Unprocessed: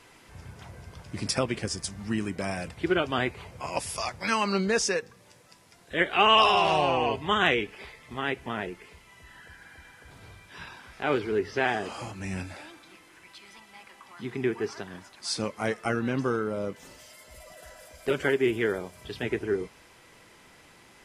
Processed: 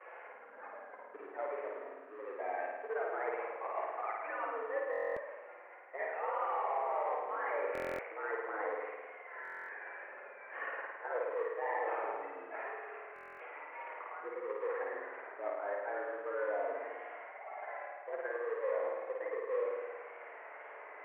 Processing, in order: CVSD 16 kbps; spectral gate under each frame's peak -15 dB strong; reverse; compressor 16:1, threshold -38 dBFS, peak gain reduction 18.5 dB; reverse; flange 0.12 Hz, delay 5 ms, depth 3.7 ms, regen -39%; vibrato 1.9 Hz 91 cents; in parallel at -5 dB: sample-rate reducer 1400 Hz, jitter 20%; on the sum: vibrato 3.8 Hz 15 cents; flutter echo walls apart 9.2 m, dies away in 1.3 s; mistuned SSB +84 Hz 400–2000 Hz; stuck buffer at 4.91/7.73/9.43/13.14, samples 1024, times 10; gain +6.5 dB

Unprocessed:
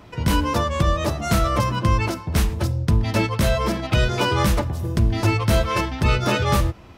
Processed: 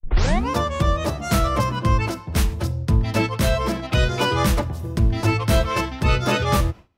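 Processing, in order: tape start at the beginning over 0.50 s; gate with hold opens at -27 dBFS; three-band expander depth 40%

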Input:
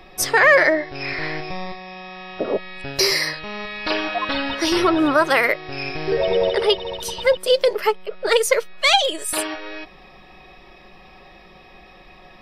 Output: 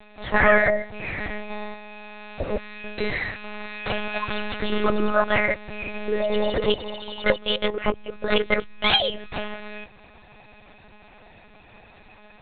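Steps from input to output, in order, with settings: monotone LPC vocoder at 8 kHz 210 Hz; gain -3.5 dB

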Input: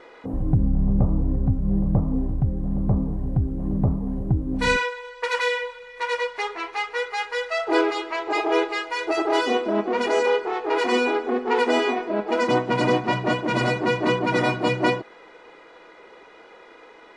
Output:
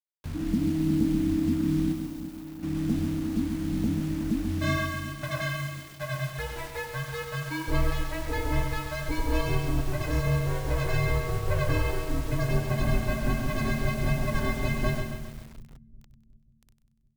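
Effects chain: bit-crush 6-bit; 1.92–2.63 inverse Chebyshev band-stop 130–3600 Hz, stop band 80 dB; split-band echo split 420 Hz, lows 0.366 s, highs 96 ms, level -11 dB; frequency shift -350 Hz; low shelf 86 Hz +8 dB; lo-fi delay 0.135 s, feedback 55%, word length 6-bit, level -6.5 dB; gain -8.5 dB

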